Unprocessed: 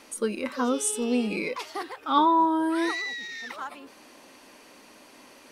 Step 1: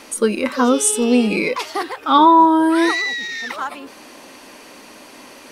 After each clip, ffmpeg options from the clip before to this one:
-af "alimiter=level_in=11.5dB:limit=-1dB:release=50:level=0:latency=1,volume=-1dB"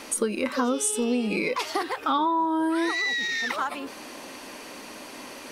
-af "acompressor=threshold=-23dB:ratio=5"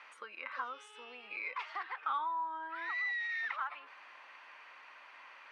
-af "asuperpass=centerf=1600:order=4:qfactor=1,volume=-8dB"

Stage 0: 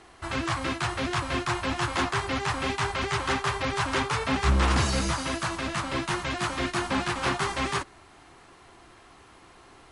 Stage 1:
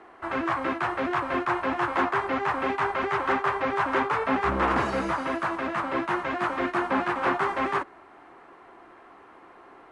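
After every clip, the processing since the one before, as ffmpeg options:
-filter_complex "[0:a]acrossover=split=230 2100:gain=0.126 1 0.0794[a][b][c];[a][b][c]amix=inputs=3:normalize=0,volume=4.5dB"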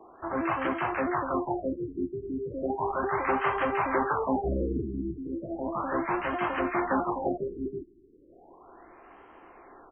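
-filter_complex "[0:a]asubboost=boost=2.5:cutoff=66,acrossover=split=1400[a][b];[b]adelay=140[c];[a][c]amix=inputs=2:normalize=0,afftfilt=real='re*lt(b*sr/1024,400*pow(3300/400,0.5+0.5*sin(2*PI*0.35*pts/sr)))':imag='im*lt(b*sr/1024,400*pow(3300/400,0.5+0.5*sin(2*PI*0.35*pts/sr)))':win_size=1024:overlap=0.75"

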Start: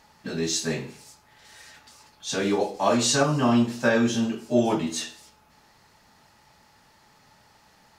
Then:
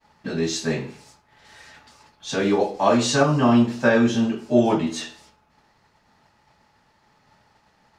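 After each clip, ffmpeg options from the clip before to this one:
-af "aemphasis=mode=reproduction:type=50kf,agate=range=-33dB:threshold=-53dB:ratio=3:detection=peak,volume=4dB"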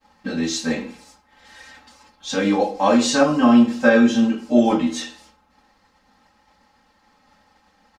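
-af "aecho=1:1:3.8:0.99,volume=-1dB"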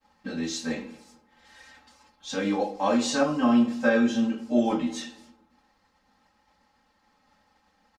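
-filter_complex "[0:a]asplit=2[a][b];[b]adelay=226,lowpass=f=840:p=1,volume=-20dB,asplit=2[c][d];[d]adelay=226,lowpass=f=840:p=1,volume=0.35,asplit=2[e][f];[f]adelay=226,lowpass=f=840:p=1,volume=0.35[g];[a][c][e][g]amix=inputs=4:normalize=0,volume=-7.5dB"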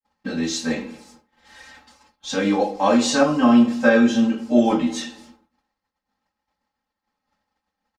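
-af "agate=range=-33dB:threshold=-53dB:ratio=3:detection=peak,volume=6.5dB"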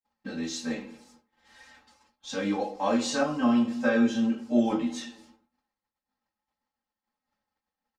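-af "flanger=delay=7.8:depth=1.8:regen=65:speed=1.8:shape=triangular,volume=-4.5dB"

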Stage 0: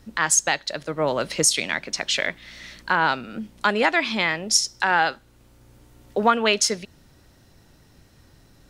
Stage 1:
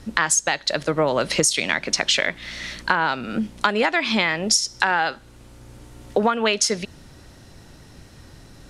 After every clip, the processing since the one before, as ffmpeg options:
-af "acompressor=threshold=-24dB:ratio=10,lowpass=f=12k:w=0.5412,lowpass=f=12k:w=1.3066,volume=8.5dB"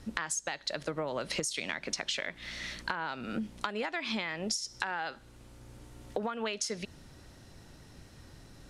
-af "acompressor=threshold=-23dB:ratio=6,volume=-7.5dB"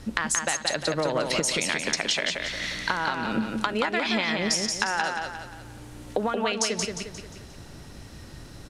-af "aecho=1:1:177|354|531|708|885:0.631|0.271|0.117|0.0502|0.0216,volume=7.5dB"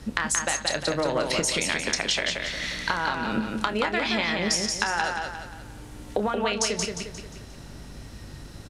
-filter_complex "[0:a]asplit=2[a][b];[b]adelay=29,volume=-10.5dB[c];[a][c]amix=inputs=2:normalize=0,aeval=exprs='val(0)+0.00562*(sin(2*PI*50*n/s)+sin(2*PI*2*50*n/s)/2+sin(2*PI*3*50*n/s)/3+sin(2*PI*4*50*n/s)/4+sin(2*PI*5*50*n/s)/5)':c=same"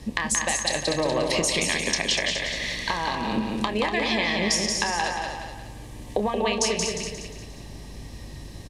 -filter_complex "[0:a]asuperstop=centerf=1400:order=4:qfactor=3.5,asplit=2[a][b];[b]aecho=0:1:242:0.422[c];[a][c]amix=inputs=2:normalize=0,volume=1dB"

